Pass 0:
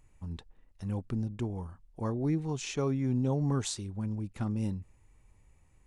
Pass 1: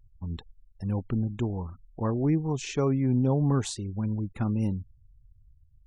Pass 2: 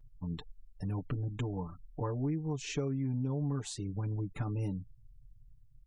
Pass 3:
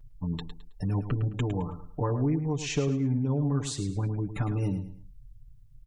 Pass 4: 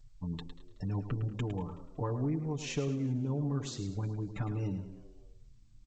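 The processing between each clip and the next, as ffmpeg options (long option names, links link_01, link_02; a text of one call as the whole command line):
ffmpeg -i in.wav -af "afftfilt=real='re*gte(hypot(re,im),0.00316)':imag='im*gte(hypot(re,im),0.00316)':win_size=1024:overlap=0.75,adynamicequalizer=threshold=0.00251:dfrequency=2200:dqfactor=0.7:tfrequency=2200:tqfactor=0.7:attack=5:release=100:ratio=0.375:range=2.5:mode=cutabove:tftype=highshelf,volume=5dB" out.wav
ffmpeg -i in.wav -af "aecho=1:1:6.8:0.94,acompressor=threshold=-30dB:ratio=4,volume=-2.5dB" out.wav
ffmpeg -i in.wav -af "aecho=1:1:107|214|321:0.299|0.0896|0.0269,volume=6.5dB" out.wav
ffmpeg -i in.wav -filter_complex "[0:a]asplit=4[link_01][link_02][link_03][link_04];[link_02]adelay=187,afreqshift=93,volume=-20dB[link_05];[link_03]adelay=374,afreqshift=186,volume=-27.1dB[link_06];[link_04]adelay=561,afreqshift=279,volume=-34.3dB[link_07];[link_01][link_05][link_06][link_07]amix=inputs=4:normalize=0,volume=-6dB" -ar 16000 -c:a g722 out.g722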